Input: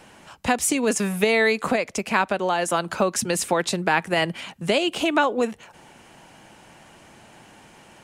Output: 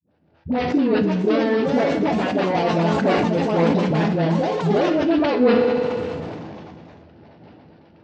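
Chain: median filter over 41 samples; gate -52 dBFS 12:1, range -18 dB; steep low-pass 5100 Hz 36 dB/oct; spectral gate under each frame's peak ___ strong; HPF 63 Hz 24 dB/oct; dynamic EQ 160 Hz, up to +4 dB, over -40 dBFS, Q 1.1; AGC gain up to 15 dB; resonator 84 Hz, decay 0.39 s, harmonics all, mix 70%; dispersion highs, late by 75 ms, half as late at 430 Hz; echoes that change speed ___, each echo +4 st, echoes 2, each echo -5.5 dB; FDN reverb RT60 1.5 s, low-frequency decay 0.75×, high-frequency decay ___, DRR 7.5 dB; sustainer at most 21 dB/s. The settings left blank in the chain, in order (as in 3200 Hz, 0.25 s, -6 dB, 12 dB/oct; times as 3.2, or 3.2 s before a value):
-50 dB, 0.652 s, 1×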